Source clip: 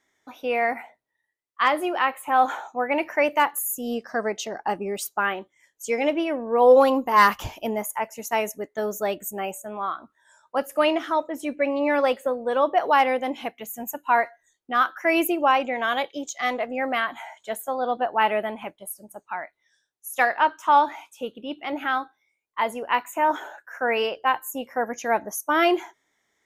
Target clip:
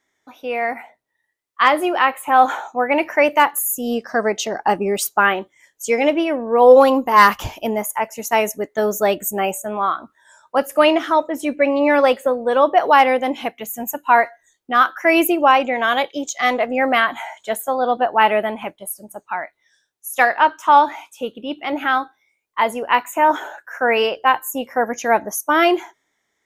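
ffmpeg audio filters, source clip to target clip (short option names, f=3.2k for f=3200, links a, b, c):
-af "dynaudnorm=f=150:g=13:m=11.5dB"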